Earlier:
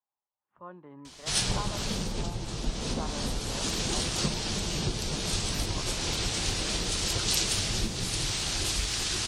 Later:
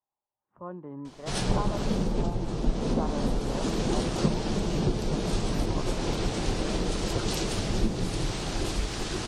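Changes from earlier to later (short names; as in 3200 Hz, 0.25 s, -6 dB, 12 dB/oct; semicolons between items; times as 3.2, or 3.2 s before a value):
background: add bell 74 Hz -10 dB 1.7 oct; master: add tilt shelf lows +9.5 dB, about 1400 Hz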